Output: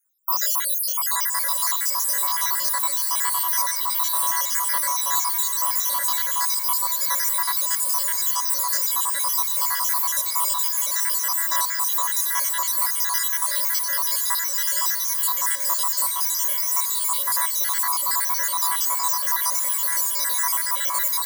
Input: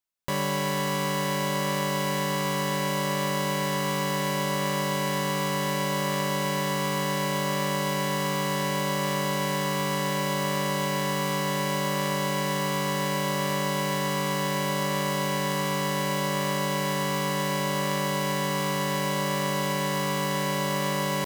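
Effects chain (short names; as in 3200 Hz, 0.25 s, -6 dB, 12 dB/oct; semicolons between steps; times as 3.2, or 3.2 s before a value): random spectral dropouts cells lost 77%; Bessel high-pass 600 Hz, order 6; tilt +4.5 dB/oct; notch 790 Hz, Q 15; vocal rider within 4 dB 0.5 s; fixed phaser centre 1100 Hz, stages 4; on a send: diffused feedback echo 1.078 s, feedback 47%, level -9 dB; on the sum: gain +7 dB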